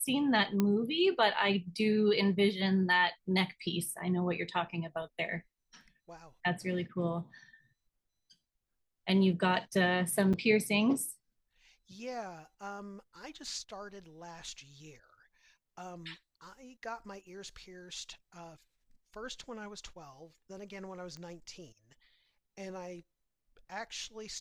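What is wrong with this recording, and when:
0.6 pop -16 dBFS
10.33–10.34 gap 6.8 ms
21.17 pop -34 dBFS

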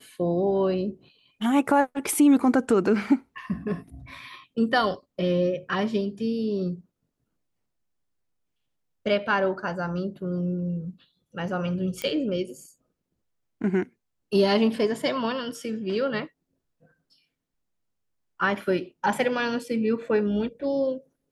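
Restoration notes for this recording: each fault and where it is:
12.02 pop -15 dBFS

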